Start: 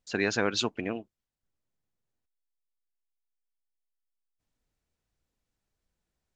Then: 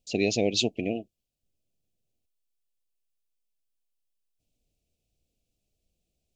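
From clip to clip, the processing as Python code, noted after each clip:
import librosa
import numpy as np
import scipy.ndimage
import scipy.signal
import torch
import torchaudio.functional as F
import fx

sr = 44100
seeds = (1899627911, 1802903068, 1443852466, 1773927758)

y = scipy.signal.sosfilt(scipy.signal.ellip(3, 1.0, 50, [690.0, 2500.0], 'bandstop', fs=sr, output='sos'), x)
y = y * librosa.db_to_amplitude(4.5)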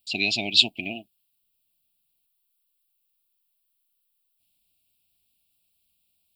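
y = fx.tilt_eq(x, sr, slope=3.5)
y = fx.fixed_phaser(y, sr, hz=1800.0, stages=6)
y = y * librosa.db_to_amplitude(5.5)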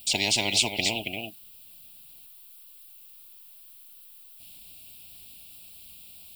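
y = x + 10.0 ** (-18.0 / 20.0) * np.pad(x, (int(275 * sr / 1000.0), 0))[:len(x)]
y = fx.spectral_comp(y, sr, ratio=4.0)
y = y * librosa.db_to_amplitude(-5.0)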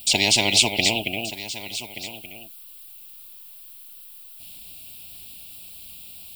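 y = x + 10.0 ** (-14.5 / 20.0) * np.pad(x, (int(1178 * sr / 1000.0), 0))[:len(x)]
y = y * librosa.db_to_amplitude(6.0)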